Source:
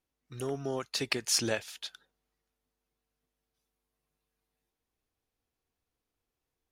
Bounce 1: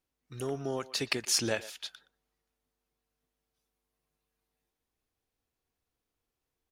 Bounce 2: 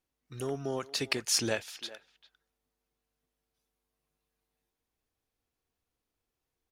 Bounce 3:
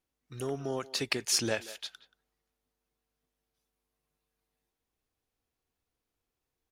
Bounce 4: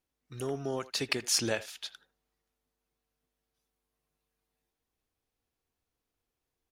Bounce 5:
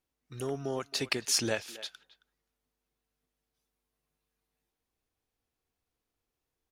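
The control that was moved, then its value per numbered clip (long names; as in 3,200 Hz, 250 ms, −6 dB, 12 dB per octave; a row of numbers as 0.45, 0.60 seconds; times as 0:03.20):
far-end echo of a speakerphone, delay time: 120, 400, 180, 80, 270 milliseconds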